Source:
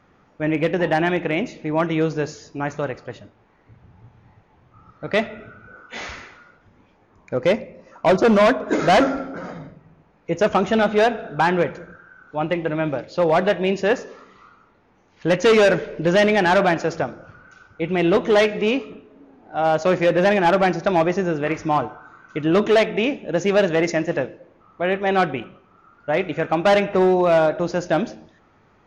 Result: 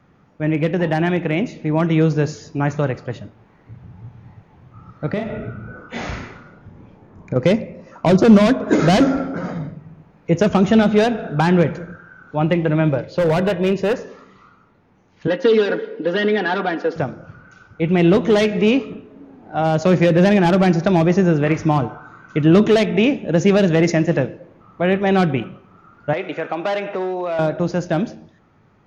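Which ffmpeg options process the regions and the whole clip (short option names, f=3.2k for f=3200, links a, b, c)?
-filter_complex "[0:a]asettb=1/sr,asplit=3[a][b][c];[a]atrim=end=5.124[d];[b]atrim=start=5.12:end=7.36,asetpts=PTS-STARTPTS,afade=t=in:d=0.004:c=qsin,afade=t=out:st=2.236:d=0.004:c=qsin,tiltshelf=f=1.1k:g=4.5,asplit=2[e][f];[f]adelay=34,volume=-4dB[g];[e][g]amix=inputs=2:normalize=0,atrim=end_sample=98784,acompressor=threshold=-27dB:ratio=4:attack=3.2:release=140:knee=1:detection=peak[h];[c]atrim=start=7.356[i];[d][h]acrossfade=d=0.004:c1=hsin:c2=qsin[j];[j][i]acrossfade=d=0.004:c1=qsin:c2=hsin,asettb=1/sr,asplit=3[k][l][m];[k]atrim=end=12.894[n];[l]atrim=start=12.89:end=14.04,asetpts=PTS-STARTPTS,afade=t=in:d=0.004:c=qsin,afade=t=out:st=1.146:d=0.004:c=qsin,highshelf=f=6.2k:g=-10,aecho=1:1:2:0.33,atrim=end_sample=50715,asoftclip=type=hard:threshold=-15dB[o];[m]atrim=start=14.036[p];[n][o]acrossfade=d=0.004:c1=hsin:c2=qsin[q];[q][p]acrossfade=d=0.004:c1=qsin:c2=hsin,asettb=1/sr,asplit=3[r][s][t];[r]atrim=end=15.274[u];[s]atrim=start=15.27:end=16.96,asetpts=PTS-STARTPTS,afade=t=in:d=0.004:c=qsin,afade=t=out:st=1.686:d=0.004:c=qsin,highpass=f=270:w=0.5412,highpass=f=270:w=1.3066,equalizer=f=360:t=q:w=4:g=4,equalizer=f=660:t=q:w=4:g=-7,equalizer=f=1.1k:t=q:w=4:g=-4,equalizer=f=2.4k:t=q:w=4:g=-9,lowpass=f=4.1k:w=0.5412,lowpass=f=4.1k:w=1.3066,aecho=1:1:4.2:0.74,atrim=end_sample=74529[v];[t]atrim=start=16.956[w];[u][v]acrossfade=d=0.004:c1=hsin:c2=qsin[x];[x][w]acrossfade=d=0.004:c1=qsin:c2=hsin,asettb=1/sr,asplit=3[y][z][aa];[y]atrim=end=26.134[ab];[z]atrim=start=26.13:end=27.39,asetpts=PTS-STARTPTS,afade=t=in:d=0.004:c=qsin,afade=t=out:st=1.256:d=0.004:c=qsin,acompressor=threshold=-21dB:ratio=5:attack=3.2:release=140:knee=1:detection=peak,highpass=390,lowpass=5.7k[ac];[aa]atrim=start=27.386[ad];[ab][ac]acrossfade=d=0.004:c1=hsin:c2=qsin[ae];[ae][ad]acrossfade=d=0.004:c1=qsin:c2=hsin,dynaudnorm=f=120:g=31:m=5dB,equalizer=f=140:t=o:w=1.7:g=8.5,acrossover=split=390|3000[af][ag][ah];[ag]acompressor=threshold=-16dB:ratio=6[ai];[af][ai][ah]amix=inputs=3:normalize=0,volume=-1.5dB"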